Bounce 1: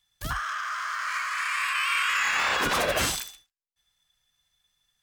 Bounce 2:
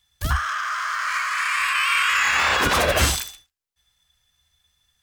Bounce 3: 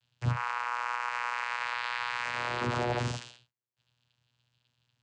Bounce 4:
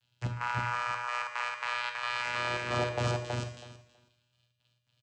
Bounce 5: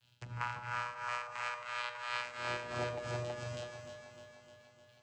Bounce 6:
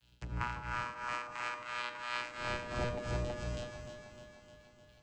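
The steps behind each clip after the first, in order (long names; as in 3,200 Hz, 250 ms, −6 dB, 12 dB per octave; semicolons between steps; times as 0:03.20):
parametric band 73 Hz +14 dB 0.59 octaves; level +5.5 dB
brickwall limiter −17 dBFS, peak gain reduction 10 dB; channel vocoder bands 8, saw 121 Hz; level −5.5 dB
gate pattern "xx.xxxx.x.x." 111 BPM −12 dB; repeating echo 324 ms, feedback 16%, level −3 dB; convolution reverb RT60 0.65 s, pre-delay 5 ms, DRR 6 dB
downward compressor 4 to 1, threshold −41 dBFS, peak gain reduction 13 dB; shaped tremolo triangle 2.9 Hz, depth 85%; delay that swaps between a low-pass and a high-pass 152 ms, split 1,100 Hz, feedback 79%, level −7 dB; level +7 dB
sub-octave generator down 1 octave, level +4 dB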